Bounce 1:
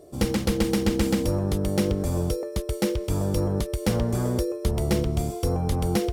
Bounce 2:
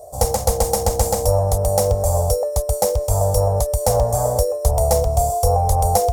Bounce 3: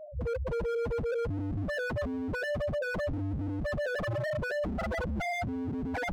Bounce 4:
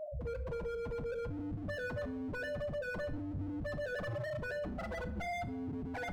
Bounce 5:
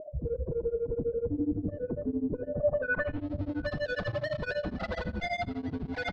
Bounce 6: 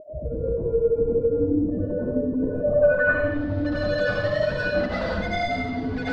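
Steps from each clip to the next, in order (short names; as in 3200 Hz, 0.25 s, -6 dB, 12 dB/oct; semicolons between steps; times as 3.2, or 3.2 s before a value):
EQ curve 100 Hz 0 dB, 160 Hz -15 dB, 350 Hz -23 dB, 490 Hz +2 dB, 730 Hz +11 dB, 1400 Hz -10 dB, 3000 Hz -16 dB, 6800 Hz +6 dB; gain +8 dB
in parallel at +3 dB: limiter -13.5 dBFS, peak gain reduction 10.5 dB; on the sum: loudest bins only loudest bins 1; wavefolder -22.5 dBFS; gain -5 dB
limiter -37 dBFS, peak gain reduction 9.5 dB; shoebox room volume 230 m³, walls mixed, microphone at 0.35 m; gain +2 dB
low-pass sweep 380 Hz -> 4300 Hz, 2.48–3.28; tapped delay 68/718 ms -18/-17 dB; beating tremolo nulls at 12 Hz; gain +8 dB
plate-style reverb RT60 0.95 s, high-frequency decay 0.9×, pre-delay 85 ms, DRR -8.5 dB; gain -1 dB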